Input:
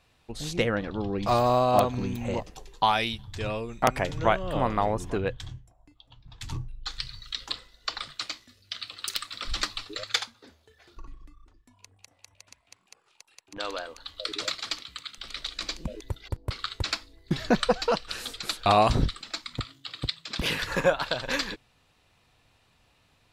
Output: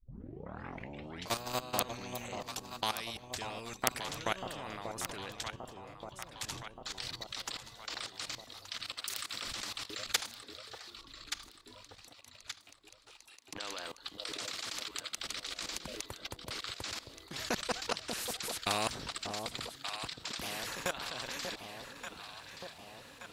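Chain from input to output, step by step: tape start at the beginning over 1.38 s; HPF 170 Hz 6 dB/oct; high shelf 4200 Hz +6 dB; level quantiser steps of 22 dB; echo with dull and thin repeats by turns 0.588 s, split 850 Hz, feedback 62%, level -11 dB; spectral compressor 2:1; gain +1 dB

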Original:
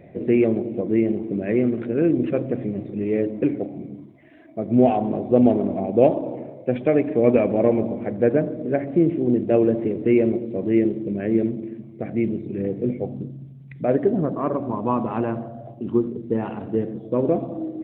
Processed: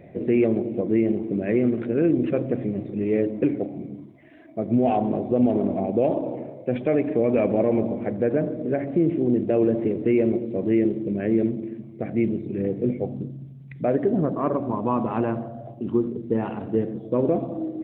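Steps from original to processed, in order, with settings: limiter -11.5 dBFS, peak gain reduction 8 dB

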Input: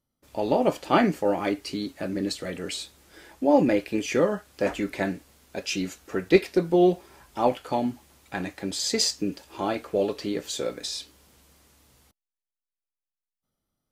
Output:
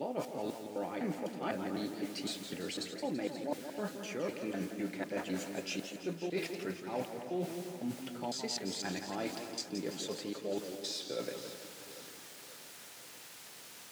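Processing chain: slices in reverse order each 0.252 s, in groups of 3; requantised 8-bit, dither triangular; reverse; compressor 6:1, threshold -34 dBFS, peak gain reduction 20.5 dB; reverse; HPF 110 Hz 24 dB/oct; high shelf 12000 Hz -9.5 dB; notch 1100 Hz, Q 17; echo with dull and thin repeats by turns 0.266 s, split 1900 Hz, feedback 71%, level -10.5 dB; warbling echo 0.167 s, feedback 54%, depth 131 cents, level -8.5 dB; gain -1.5 dB

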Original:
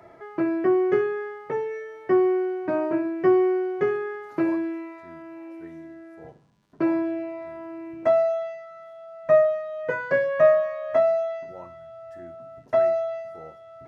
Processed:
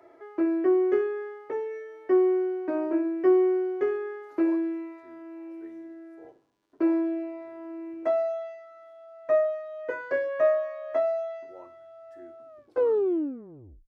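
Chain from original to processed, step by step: tape stop at the end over 1.41 s; resonant low shelf 240 Hz -9 dB, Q 3; gain -7 dB

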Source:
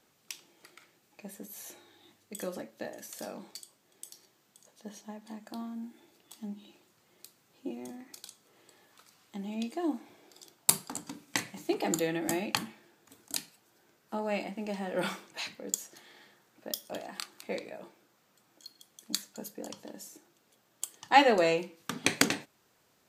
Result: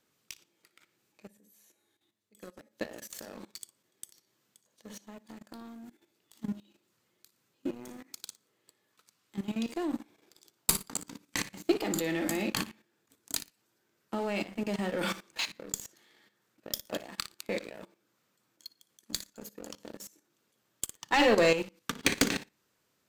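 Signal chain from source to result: 1.27–2.71 resonator 210 Hz, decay 1.3 s, mix 70%; added harmonics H 4 -12 dB, 5 -16 dB, 6 -11 dB, 7 -38 dB, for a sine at -3 dBFS; on a send: flutter echo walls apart 10 m, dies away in 0.27 s; on the sum: dynamic EQ 9500 Hz, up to -4 dB, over -57 dBFS, Q 4.5; level quantiser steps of 11 dB; sample leveller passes 2; bell 750 Hz -6 dB 0.5 oct; gain -5 dB

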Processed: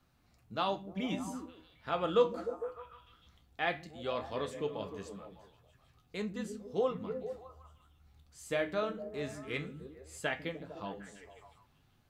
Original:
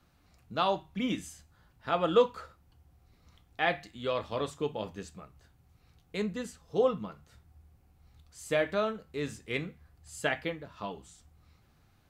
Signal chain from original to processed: delay with a stepping band-pass 0.151 s, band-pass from 210 Hz, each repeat 0.7 oct, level -5 dB; flange 0.17 Hz, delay 7.5 ms, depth 9.1 ms, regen +66%

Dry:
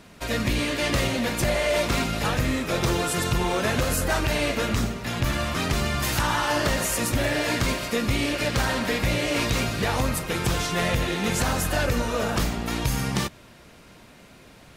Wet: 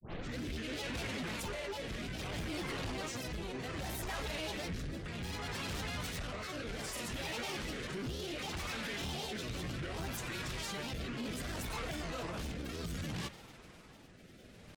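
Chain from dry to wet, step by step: tape start at the beginning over 0.41 s; dynamic EQ 3100 Hz, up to +4 dB, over -40 dBFS, Q 1.1; limiter -22.5 dBFS, peak gain reduction 11.5 dB; grains, spray 19 ms, pitch spread up and down by 7 st; rotary speaker horn 0.65 Hz; soft clip -32 dBFS, distortion -13 dB; gain -2.5 dB

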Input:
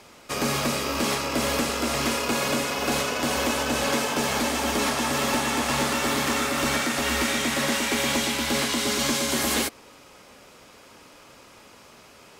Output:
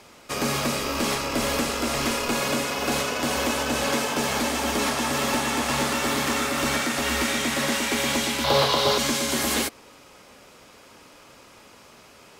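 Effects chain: 0.78–2.39 added noise brown -47 dBFS; 8.44–8.98 ten-band EQ 125 Hz +12 dB, 250 Hz -12 dB, 500 Hz +11 dB, 1000 Hz +9 dB, 2000 Hz -5 dB, 4000 Hz +9 dB, 8000 Hz -9 dB

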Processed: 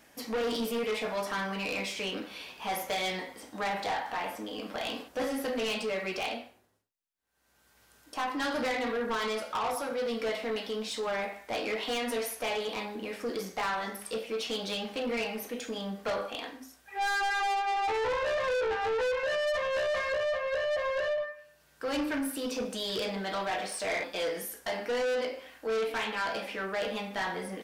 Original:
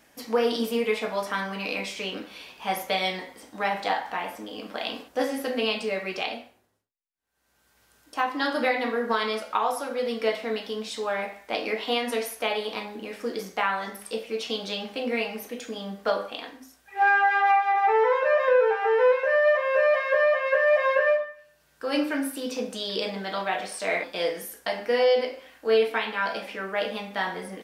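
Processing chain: 20.12–21.18 bell 2400 Hz -6 dB 2.9 oct; soft clip -27.5 dBFS, distortion -7 dB

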